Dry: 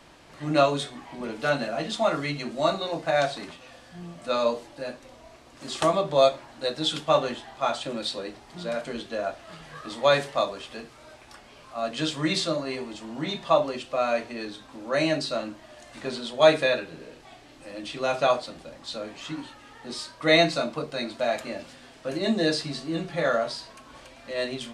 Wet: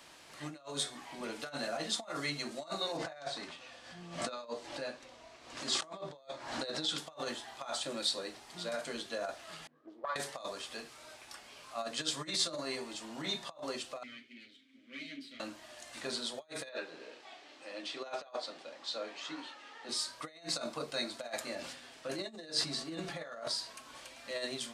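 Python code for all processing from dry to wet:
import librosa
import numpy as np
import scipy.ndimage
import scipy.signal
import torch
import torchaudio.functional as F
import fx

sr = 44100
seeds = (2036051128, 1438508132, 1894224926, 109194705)

y = fx.chain(x, sr, fx.air_absorb(metres=72.0),
    fx.pre_swell(db_per_s=74.0), at=(2.97, 6.98))
y = fx.chain(y, sr, fx.auto_wah(base_hz=230.0, top_hz=1100.0, q=5.7, full_db=-22.0, direction='up'),
    fx.doppler_dist(depth_ms=0.27), at=(9.67, 10.16))
y = fx.chain(y, sr, fx.lower_of_two(delay_ms=7.8),
    fx.vowel_filter(vowel='i'), at=(14.03, 15.4))
y = fx.chain(y, sr, fx.bandpass_edges(low_hz=370.0, high_hz=4800.0),
    fx.low_shelf(hz=500.0, db=5.0), at=(16.69, 19.89))
y = fx.chain(y, sr, fx.high_shelf(hz=5700.0, db=-5.5),
    fx.sustainer(db_per_s=68.0), at=(21.55, 23.48))
y = fx.dynamic_eq(y, sr, hz=2700.0, q=1.9, threshold_db=-46.0, ratio=4.0, max_db=-6)
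y = fx.over_compress(y, sr, threshold_db=-29.0, ratio=-0.5)
y = fx.tilt_eq(y, sr, slope=2.5)
y = F.gain(torch.from_numpy(y), -8.5).numpy()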